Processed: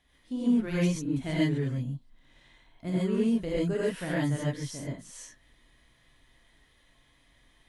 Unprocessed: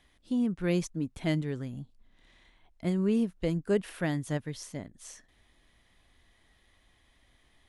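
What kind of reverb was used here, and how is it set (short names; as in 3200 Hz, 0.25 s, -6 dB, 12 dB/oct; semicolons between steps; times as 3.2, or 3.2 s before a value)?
non-linear reverb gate 0.16 s rising, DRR -7.5 dB; gain -6 dB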